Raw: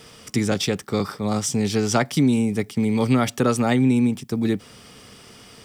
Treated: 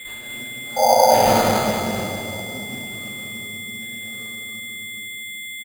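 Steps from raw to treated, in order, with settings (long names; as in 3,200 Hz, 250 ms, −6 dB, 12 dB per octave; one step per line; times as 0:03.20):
slices reordered back to front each 137 ms, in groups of 5
source passing by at 0:01.20, 32 m/s, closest 1.9 metres
high-shelf EQ 2,900 Hz +11.5 dB
steady tone 7,600 Hz −28 dBFS
sound drawn into the spectrogram noise, 0:00.76–0:00.99, 480–960 Hz −16 dBFS
single-tap delay 205 ms −6 dB
rectangular room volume 140 cubic metres, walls hard, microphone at 2.1 metres
bad sample-rate conversion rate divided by 8×, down none, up hold
level −9 dB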